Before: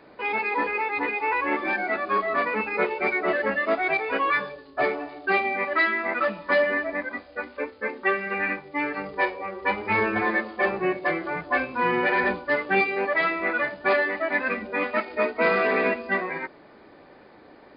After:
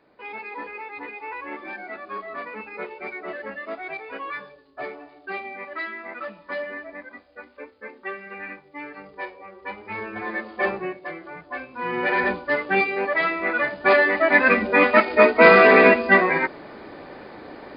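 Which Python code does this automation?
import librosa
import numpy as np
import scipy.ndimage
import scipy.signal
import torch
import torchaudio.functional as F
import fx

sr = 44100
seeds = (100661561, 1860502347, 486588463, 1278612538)

y = fx.gain(x, sr, db=fx.line((10.08, -9.5), (10.69, 1.0), (10.97, -9.0), (11.7, -9.0), (12.11, 1.0), (13.43, 1.0), (14.52, 10.0)))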